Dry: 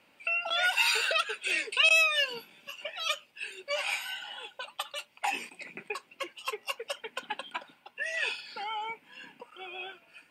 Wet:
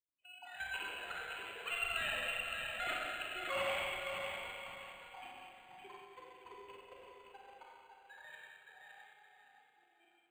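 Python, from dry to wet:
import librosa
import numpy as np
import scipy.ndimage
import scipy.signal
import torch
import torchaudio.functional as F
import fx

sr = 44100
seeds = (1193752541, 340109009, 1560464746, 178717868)

y = fx.bin_expand(x, sr, power=1.5)
y = fx.doppler_pass(y, sr, speed_mps=24, closest_m=7.8, pass_at_s=3.15)
y = fx.peak_eq(y, sr, hz=230.0, db=-12.5, octaves=0.6)
y = fx.notch(y, sr, hz=560.0, q=12.0)
y = fx.level_steps(y, sr, step_db=15)
y = fx.echo_thinned(y, sr, ms=566, feedback_pct=29, hz=420.0, wet_db=-5.0)
y = fx.rev_schroeder(y, sr, rt60_s=2.3, comb_ms=31, drr_db=-4.5)
y = np.interp(np.arange(len(y)), np.arange(len(y))[::8], y[::8])
y = y * librosa.db_to_amplitude(7.0)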